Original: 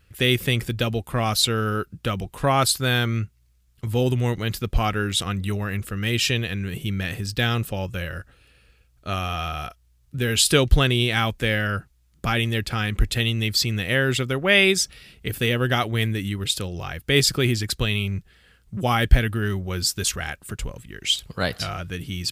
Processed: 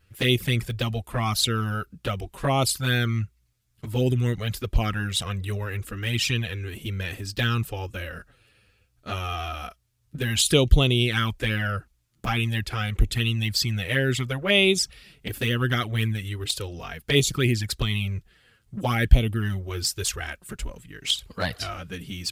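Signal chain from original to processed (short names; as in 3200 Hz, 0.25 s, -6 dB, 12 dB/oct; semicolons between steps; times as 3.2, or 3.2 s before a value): envelope flanger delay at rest 10.4 ms, full sweep at -15 dBFS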